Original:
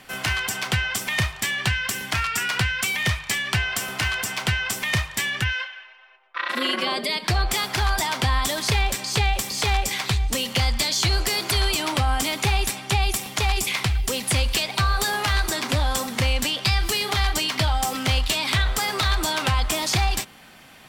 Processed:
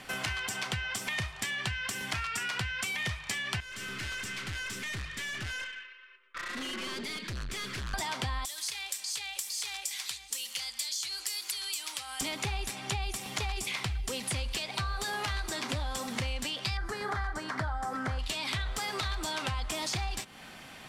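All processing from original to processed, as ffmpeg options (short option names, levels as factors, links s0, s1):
-filter_complex "[0:a]asettb=1/sr,asplit=3[s0][s1][s2];[s0]atrim=end=3.604[s3];[s1]atrim=start=3.6:end=7.94,asetpts=PTS-STARTPTS,afade=t=in:d=0.004:c=qsin,afade=t=out:st=4.336:d=0.004:c=qsin,asuperstop=centerf=750:order=4:qfactor=0.94,highshelf=f=6800:g=-10,aeval=exprs='(tanh(56.2*val(0)+0.25)-tanh(0.25))/56.2':c=same[s4];[s2]atrim=start=7.936[s5];[s3][s4]acrossfade=d=0.004:c1=hsin:c2=qsin[s6];[s6][s5]acrossfade=d=0.004:c1=qsin:c2=hsin,asettb=1/sr,asplit=3[s7][s8][s9];[s7]atrim=end=8.454[s10];[s8]atrim=start=8.45:end=12.21,asetpts=PTS-STARTPTS,afade=t=in:d=0.004:c=qsin,afade=t=out:st=3.756:d=0.004:c=qsin,aderivative,bandreject=f=650:w=11[s11];[s9]atrim=start=12.206[s12];[s10][s11]acrossfade=d=0.004:c1=hsin:c2=qsin[s13];[s13][s12]acrossfade=d=0.004:c1=qsin:c2=hsin,asettb=1/sr,asplit=3[s14][s15][s16];[s14]atrim=end=16.774[s17];[s15]atrim=start=16.77:end=18.19,asetpts=PTS-STARTPTS,afade=t=in:d=0.004:c=qsin,afade=t=out:st=1.416:d=0.004:c=qsin,lowpass=12000,highshelf=f=2100:t=q:w=3:g=-9.5[s18];[s16]atrim=start=18.186[s19];[s17][s18]acrossfade=d=0.004:c1=hsin:c2=qsin[s20];[s20][s19]acrossfade=d=0.004:c1=qsin:c2=hsin,lowpass=11000,acompressor=threshold=0.0224:ratio=4"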